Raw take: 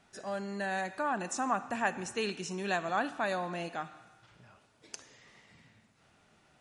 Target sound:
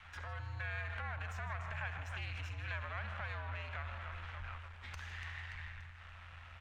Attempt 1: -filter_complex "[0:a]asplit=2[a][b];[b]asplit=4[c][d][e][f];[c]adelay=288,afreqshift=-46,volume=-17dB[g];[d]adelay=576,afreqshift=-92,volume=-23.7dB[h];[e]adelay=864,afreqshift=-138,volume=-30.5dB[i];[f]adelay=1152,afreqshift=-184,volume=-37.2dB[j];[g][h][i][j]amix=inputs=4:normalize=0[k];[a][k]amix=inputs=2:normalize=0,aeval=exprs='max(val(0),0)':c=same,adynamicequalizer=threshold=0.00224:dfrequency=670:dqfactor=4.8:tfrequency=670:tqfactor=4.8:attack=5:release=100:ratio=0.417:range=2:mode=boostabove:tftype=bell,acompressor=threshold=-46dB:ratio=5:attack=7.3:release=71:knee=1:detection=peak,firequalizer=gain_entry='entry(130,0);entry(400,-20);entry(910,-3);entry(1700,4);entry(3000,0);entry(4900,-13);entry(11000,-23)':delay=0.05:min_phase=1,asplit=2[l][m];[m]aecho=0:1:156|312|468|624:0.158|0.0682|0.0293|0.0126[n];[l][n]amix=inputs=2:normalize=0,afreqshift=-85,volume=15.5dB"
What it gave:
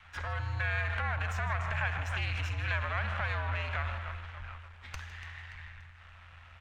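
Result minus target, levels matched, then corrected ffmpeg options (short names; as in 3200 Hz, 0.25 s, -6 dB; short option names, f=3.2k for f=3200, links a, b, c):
compressor: peak gain reduction -9 dB
-filter_complex "[0:a]asplit=2[a][b];[b]asplit=4[c][d][e][f];[c]adelay=288,afreqshift=-46,volume=-17dB[g];[d]adelay=576,afreqshift=-92,volume=-23.7dB[h];[e]adelay=864,afreqshift=-138,volume=-30.5dB[i];[f]adelay=1152,afreqshift=-184,volume=-37.2dB[j];[g][h][i][j]amix=inputs=4:normalize=0[k];[a][k]amix=inputs=2:normalize=0,aeval=exprs='max(val(0),0)':c=same,adynamicequalizer=threshold=0.00224:dfrequency=670:dqfactor=4.8:tfrequency=670:tqfactor=4.8:attack=5:release=100:ratio=0.417:range=2:mode=boostabove:tftype=bell,acompressor=threshold=-57.5dB:ratio=5:attack=7.3:release=71:knee=1:detection=peak,firequalizer=gain_entry='entry(130,0);entry(400,-20);entry(910,-3);entry(1700,4);entry(3000,0);entry(4900,-13);entry(11000,-23)':delay=0.05:min_phase=1,asplit=2[l][m];[m]aecho=0:1:156|312|468|624:0.158|0.0682|0.0293|0.0126[n];[l][n]amix=inputs=2:normalize=0,afreqshift=-85,volume=15.5dB"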